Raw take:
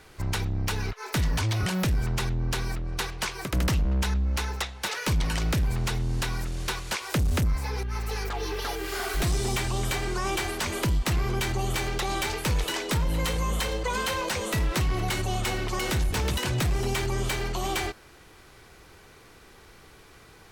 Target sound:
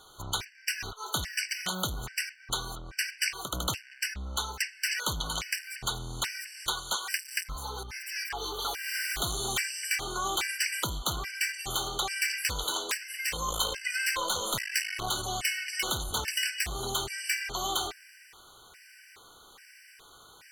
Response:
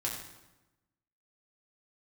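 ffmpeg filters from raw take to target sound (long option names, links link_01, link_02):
-filter_complex "[0:a]asettb=1/sr,asplit=3[link_01][link_02][link_03];[link_01]atrim=end=13.484[link_04];[link_02]atrim=start=13.48:end=15.08,asetpts=PTS-STARTPTS,afade=type=in:duration=0.004:curve=qsin,afade=type=out:start_time=1.596:duration=0.004:curve=qsin,aeval=exprs='0.1*(cos(1*acos(clip(val(0)/0.1,-1,1)))-cos(1*PI/2))+0.0316*(cos(2*acos(clip(val(0)/0.1,-1,1)))-cos(2*PI/2))':channel_layout=same[link_05];[link_03]atrim=start=15.076[link_06];[link_04][link_05]acrossfade=duration=0.004:curve1=hsin:curve2=qsin[link_07];[link_07][link_06]acrossfade=duration=0.004:curve1=qsin:curve2=hsin,tiltshelf=frequency=630:gain=-9,afftfilt=real='re*gt(sin(2*PI*1.2*pts/sr)*(1-2*mod(floor(b*sr/1024/1500),2)),0)':imag='im*gt(sin(2*PI*1.2*pts/sr)*(1-2*mod(floor(b*sr/1024/1500),2)),0)':win_size=1024:overlap=0.75,volume=-3.5dB"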